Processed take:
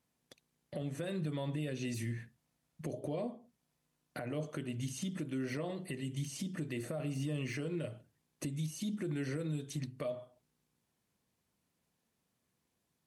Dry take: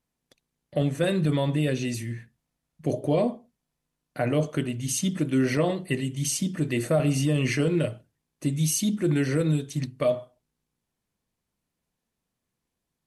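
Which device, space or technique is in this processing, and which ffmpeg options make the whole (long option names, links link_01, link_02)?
podcast mastering chain: -af "highpass=74,deesser=0.8,acompressor=threshold=-34dB:ratio=2.5,alimiter=level_in=6.5dB:limit=-24dB:level=0:latency=1:release=366,volume=-6.5dB,volume=2dB" -ar 48000 -c:a libmp3lame -b:a 128k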